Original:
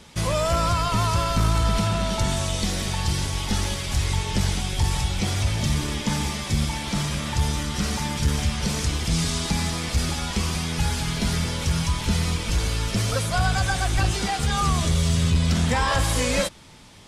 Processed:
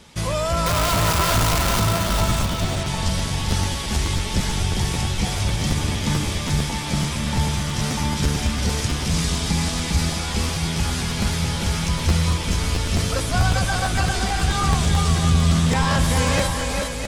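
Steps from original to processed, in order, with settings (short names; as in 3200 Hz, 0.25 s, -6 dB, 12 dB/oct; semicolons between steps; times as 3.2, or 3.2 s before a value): 0.66–1.8 infinite clipping; 2.43–2.87 LPF 3500 Hz; bouncing-ball echo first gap 0.4 s, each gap 0.65×, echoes 5; crackling interface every 0.11 s, samples 512, repeat, from 0.86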